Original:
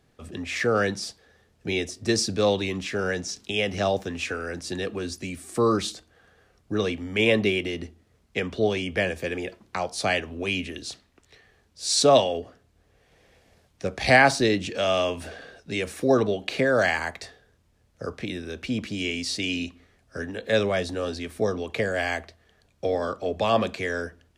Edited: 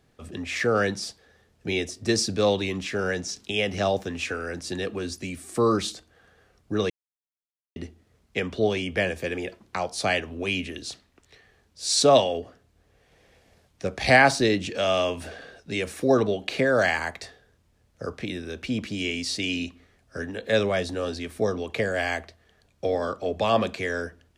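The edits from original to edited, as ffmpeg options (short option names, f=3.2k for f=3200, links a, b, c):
-filter_complex "[0:a]asplit=3[a][b][c];[a]atrim=end=6.9,asetpts=PTS-STARTPTS,afade=t=out:st=6.896:d=0.004:c=hsin[d];[b]atrim=start=6.9:end=7.76,asetpts=PTS-STARTPTS,volume=0[e];[c]atrim=start=7.76,asetpts=PTS-STARTPTS,afade=t=in:d=0.004:c=hsin[f];[d][e][f]concat=n=3:v=0:a=1"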